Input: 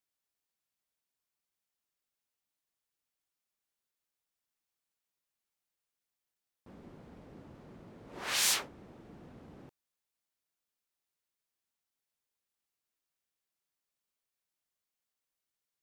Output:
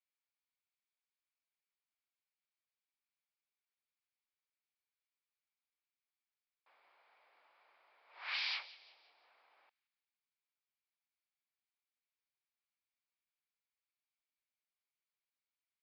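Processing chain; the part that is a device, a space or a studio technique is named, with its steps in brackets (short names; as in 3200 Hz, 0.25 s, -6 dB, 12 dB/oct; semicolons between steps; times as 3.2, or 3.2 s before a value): 8.37–9.24 bell 1400 Hz -4.5 dB 1 oct; musical greeting card (downsampling 11025 Hz; HPF 790 Hz 24 dB/oct; bell 2300 Hz +8.5 dB 0.25 oct); thin delay 0.177 s, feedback 42%, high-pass 2300 Hz, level -16.5 dB; gain -7 dB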